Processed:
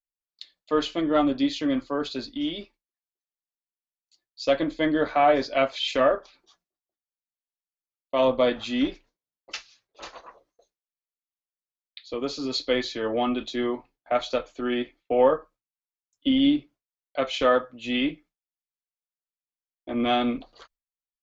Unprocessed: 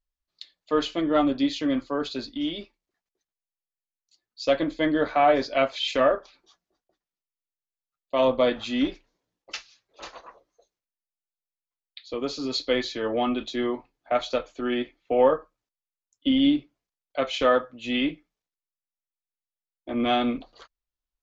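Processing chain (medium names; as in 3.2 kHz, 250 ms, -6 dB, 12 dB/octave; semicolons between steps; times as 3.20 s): gate with hold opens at -55 dBFS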